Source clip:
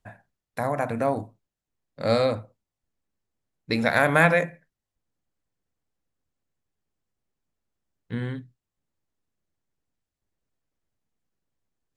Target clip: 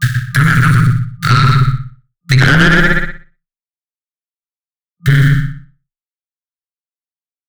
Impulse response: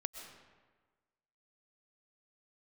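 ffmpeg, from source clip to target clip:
-filter_complex "[0:a]aeval=exprs='val(0)*gte(abs(val(0)),0.00708)':c=same,equalizer=f=100:t=o:w=0.33:g=6,equalizer=f=2.5k:t=o:w=0.33:g=-11,equalizer=f=5k:t=o:w=0.33:g=-3,atempo=1.6,afftfilt=real='re*(1-between(b*sr/4096,160,1200))':imag='im*(1-between(b*sr/4096,160,1200))':win_size=4096:overlap=0.75,aeval=exprs='0.841*(cos(1*acos(clip(val(0)/0.841,-1,1)))-cos(1*PI/2))+0.00473*(cos(2*acos(clip(val(0)/0.841,-1,1)))-cos(2*PI/2))+0.376*(cos(3*acos(clip(val(0)/0.841,-1,1)))-cos(3*PI/2))+0.237*(cos(4*acos(clip(val(0)/0.841,-1,1)))-cos(4*PI/2))+0.188*(cos(5*acos(clip(val(0)/0.841,-1,1)))-cos(5*PI/2))':c=same,asplit=2[a][b];[b]adelay=122,lowpass=f=1.9k:p=1,volume=-4.5dB,asplit=2[c][d];[d]adelay=122,lowpass=f=1.9k:p=1,volume=0.18,asplit=2[e][f];[f]adelay=122,lowpass=f=1.9k:p=1,volume=0.18[g];[c][e][g]amix=inputs=3:normalize=0[h];[a][h]amix=inputs=2:normalize=0,acrossover=split=4400[i][j];[j]acompressor=threshold=-51dB:ratio=4:attack=1:release=60[k];[i][k]amix=inputs=2:normalize=0,asplit=2[l][m];[m]aecho=0:1:61|122|183|244:0.398|0.147|0.0545|0.0202[n];[l][n]amix=inputs=2:normalize=0,afreqshift=17,acrossover=split=140|1100|4900[o][p][q][r];[o]acompressor=threshold=-42dB:ratio=4[s];[p]acompressor=threshold=-35dB:ratio=4[t];[q]acompressor=threshold=-40dB:ratio=4[u];[r]acompressor=threshold=-60dB:ratio=4[v];[s][t][u][v]amix=inputs=4:normalize=0,aeval=exprs='(tanh(44.7*val(0)+0.3)-tanh(0.3))/44.7':c=same,alimiter=level_in=35.5dB:limit=-1dB:release=50:level=0:latency=1,volume=-1dB"

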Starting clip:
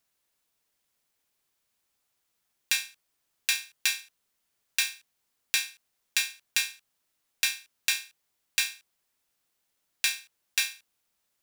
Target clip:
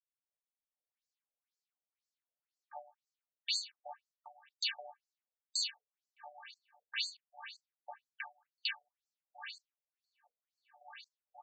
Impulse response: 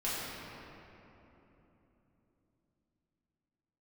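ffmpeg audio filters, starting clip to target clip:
-filter_complex "[0:a]afftfilt=real='real(if(lt(b,272),68*(eq(floor(b/68),0)*3+eq(floor(b/68),1)*2+eq(floor(b/68),2)*1+eq(floor(b/68),3)*0)+mod(b,68),b),0)':imag='imag(if(lt(b,272),68*(eq(floor(b/68),0)*3+eq(floor(b/68),1)*2+eq(floor(b/68),2)*1+eq(floor(b/68),3)*0)+mod(b,68),b),0)':win_size=2048:overlap=0.75,agate=range=-15dB:threshold=-49dB:ratio=16:detection=peak,afreqshift=420,areverse,acompressor=threshold=-32dB:ratio=16,areverse,acrossover=split=950[a][b];[b]adelay=770[c];[a][c]amix=inputs=2:normalize=0,afftfilt=real='re*between(b*sr/1024,510*pow(6000/510,0.5+0.5*sin(2*PI*2*pts/sr))/1.41,510*pow(6000/510,0.5+0.5*sin(2*PI*2*pts/sr))*1.41)':imag='im*between(b*sr/1024,510*pow(6000/510,0.5+0.5*sin(2*PI*2*pts/sr))/1.41,510*pow(6000/510,0.5+0.5*sin(2*PI*2*pts/sr))*1.41)':win_size=1024:overlap=0.75,volume=4dB"

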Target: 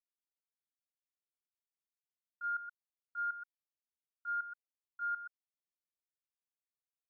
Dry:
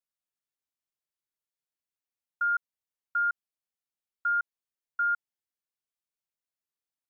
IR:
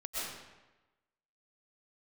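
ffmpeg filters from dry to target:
-filter_complex "[0:a]agate=range=-17dB:threshold=-25dB:ratio=16:detection=peak[a];[1:a]atrim=start_sample=2205,atrim=end_sample=4410,asetrate=34398,aresample=44100[b];[a][b]afir=irnorm=-1:irlink=0,volume=3dB"

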